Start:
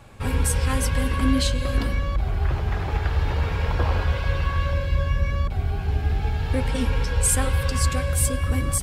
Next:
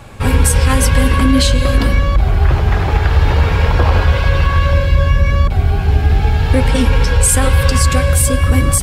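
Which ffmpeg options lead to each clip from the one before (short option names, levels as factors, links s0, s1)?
-af "alimiter=level_in=4.22:limit=0.891:release=50:level=0:latency=1,volume=0.891"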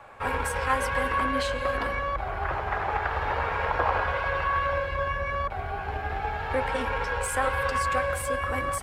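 -filter_complex "[0:a]aeval=exprs='0.794*(cos(1*acos(clip(val(0)/0.794,-1,1)))-cos(1*PI/2))+0.0398*(cos(3*acos(clip(val(0)/0.794,-1,1)))-cos(3*PI/2))':c=same,acrossover=split=540 2000:gain=0.0891 1 0.126[s0][s1][s2];[s0][s1][s2]amix=inputs=3:normalize=0,volume=0.75"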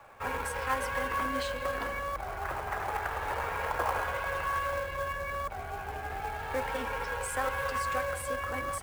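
-filter_complex "[0:a]acrossover=split=200[s0][s1];[s0]asoftclip=type=tanh:threshold=0.02[s2];[s1]acrusher=bits=4:mode=log:mix=0:aa=0.000001[s3];[s2][s3]amix=inputs=2:normalize=0,volume=0.531"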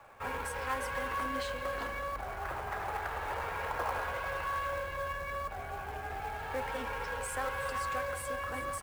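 -filter_complex "[0:a]asplit=2[s0][s1];[s1]volume=50.1,asoftclip=hard,volume=0.02,volume=0.562[s2];[s0][s2]amix=inputs=2:normalize=0,aecho=1:1:374:0.224,volume=0.501"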